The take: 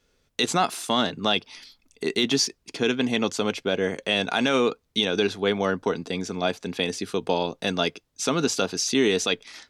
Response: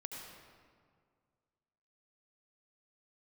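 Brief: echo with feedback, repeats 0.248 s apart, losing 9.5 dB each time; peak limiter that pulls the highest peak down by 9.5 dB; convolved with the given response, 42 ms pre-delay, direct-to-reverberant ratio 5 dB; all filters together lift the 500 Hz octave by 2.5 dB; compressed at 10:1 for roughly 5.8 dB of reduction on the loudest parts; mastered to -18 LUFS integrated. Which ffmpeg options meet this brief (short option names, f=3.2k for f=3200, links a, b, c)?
-filter_complex "[0:a]equalizer=f=500:t=o:g=3,acompressor=threshold=-21dB:ratio=10,alimiter=limit=-19dB:level=0:latency=1,aecho=1:1:248|496|744|992:0.335|0.111|0.0365|0.012,asplit=2[a][b];[1:a]atrim=start_sample=2205,adelay=42[c];[b][c]afir=irnorm=-1:irlink=0,volume=-3dB[d];[a][d]amix=inputs=2:normalize=0,volume=11dB"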